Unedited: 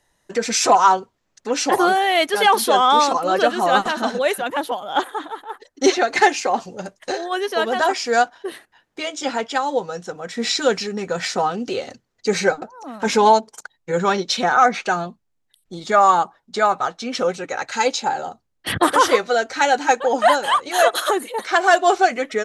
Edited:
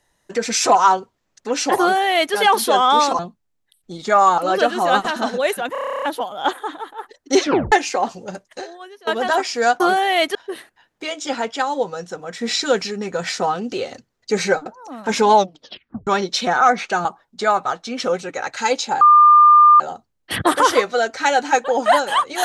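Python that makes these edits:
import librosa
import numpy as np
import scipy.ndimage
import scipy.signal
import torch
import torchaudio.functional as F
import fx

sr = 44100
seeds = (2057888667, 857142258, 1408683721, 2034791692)

y = fx.edit(x, sr, fx.duplicate(start_s=1.79, length_s=0.55, to_s=8.31),
    fx.stutter(start_s=4.53, slice_s=0.03, count=11),
    fx.tape_stop(start_s=5.94, length_s=0.29),
    fx.fade_out_to(start_s=6.86, length_s=0.72, curve='qua', floor_db=-21.0),
    fx.tape_stop(start_s=13.3, length_s=0.73),
    fx.move(start_s=15.01, length_s=1.19, to_s=3.19),
    fx.insert_tone(at_s=18.16, length_s=0.79, hz=1200.0, db=-6.0), tone=tone)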